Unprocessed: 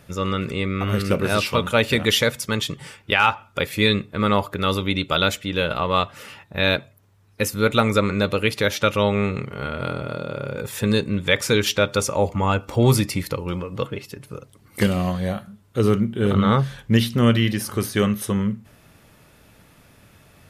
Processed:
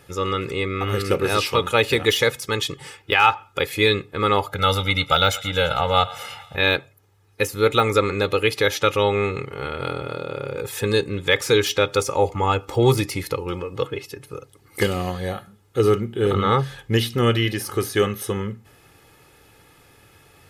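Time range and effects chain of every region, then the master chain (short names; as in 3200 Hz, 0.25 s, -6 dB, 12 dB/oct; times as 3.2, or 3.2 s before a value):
4.47–6.56 comb 1.4 ms, depth 98% + thinning echo 0.113 s, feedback 70%, high-pass 540 Hz, level -18.5 dB
whole clip: de-esser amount 45%; low shelf 78 Hz -9.5 dB; comb 2.4 ms, depth 60%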